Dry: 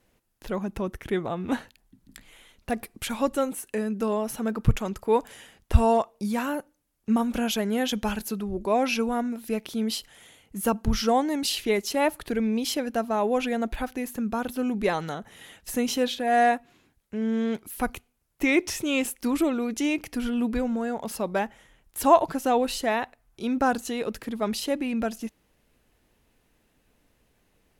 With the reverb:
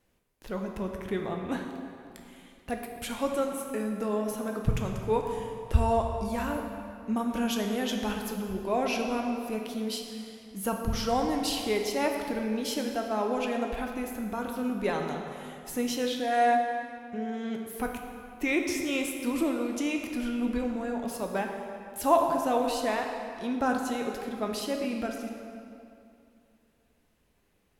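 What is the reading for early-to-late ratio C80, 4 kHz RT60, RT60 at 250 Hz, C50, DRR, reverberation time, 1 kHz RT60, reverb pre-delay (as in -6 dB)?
5.0 dB, 1.8 s, 2.7 s, 3.5 dB, 2.0 dB, 2.6 s, 2.5 s, 8 ms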